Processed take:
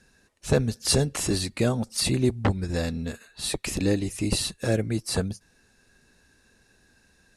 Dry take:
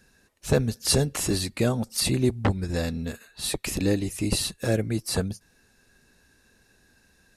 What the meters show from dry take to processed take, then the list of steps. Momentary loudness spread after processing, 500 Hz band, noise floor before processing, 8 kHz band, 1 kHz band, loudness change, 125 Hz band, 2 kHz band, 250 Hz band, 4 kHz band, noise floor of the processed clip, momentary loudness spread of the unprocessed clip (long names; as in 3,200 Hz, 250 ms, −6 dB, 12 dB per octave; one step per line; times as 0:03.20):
9 LU, 0.0 dB, −63 dBFS, −0.5 dB, 0.0 dB, 0.0 dB, 0.0 dB, 0.0 dB, 0.0 dB, 0.0 dB, −63 dBFS, 9 LU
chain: low-pass filter 11,000 Hz 24 dB per octave